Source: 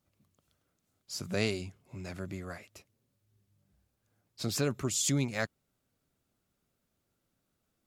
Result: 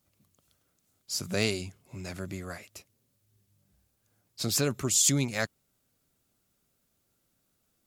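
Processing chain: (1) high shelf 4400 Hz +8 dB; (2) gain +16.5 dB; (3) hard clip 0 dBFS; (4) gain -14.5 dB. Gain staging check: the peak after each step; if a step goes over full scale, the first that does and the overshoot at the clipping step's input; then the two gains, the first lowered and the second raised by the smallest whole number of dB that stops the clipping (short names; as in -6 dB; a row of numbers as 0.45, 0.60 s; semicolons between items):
-13.0, +3.5, 0.0, -14.5 dBFS; step 2, 3.5 dB; step 2 +12.5 dB, step 4 -10.5 dB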